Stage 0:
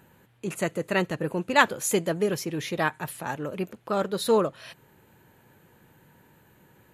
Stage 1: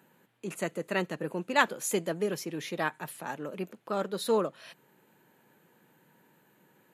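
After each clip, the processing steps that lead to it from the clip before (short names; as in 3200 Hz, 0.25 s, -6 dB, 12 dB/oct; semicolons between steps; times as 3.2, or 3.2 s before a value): HPF 160 Hz 24 dB/oct; gain -5 dB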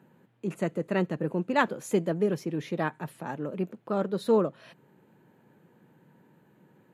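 tilt -3 dB/oct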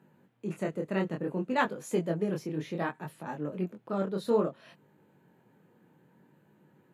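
chorus 0.61 Hz, delay 19.5 ms, depth 6.8 ms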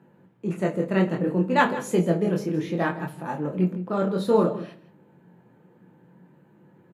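echo 0.164 s -15 dB; shoebox room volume 390 m³, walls furnished, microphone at 0.8 m; mismatched tape noise reduction decoder only; gain +6.5 dB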